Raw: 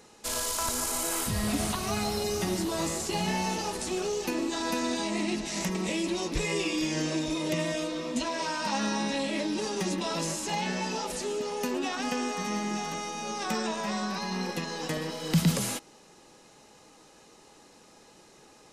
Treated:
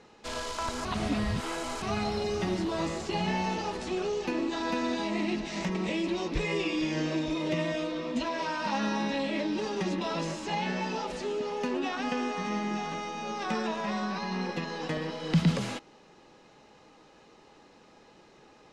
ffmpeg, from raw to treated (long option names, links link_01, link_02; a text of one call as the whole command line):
ffmpeg -i in.wav -filter_complex "[0:a]asplit=3[link_01][link_02][link_03];[link_01]atrim=end=0.852[link_04];[link_02]atrim=start=0.848:end=1.822,asetpts=PTS-STARTPTS,areverse[link_05];[link_03]atrim=start=1.818[link_06];[link_04][link_05]acrossfade=duration=0.004:curve1=hsin:curve2=hsin[link_07];[link_07][link_06]acrossfade=duration=0.004:curve1=hsin:curve2=hsin,lowpass=3700" out.wav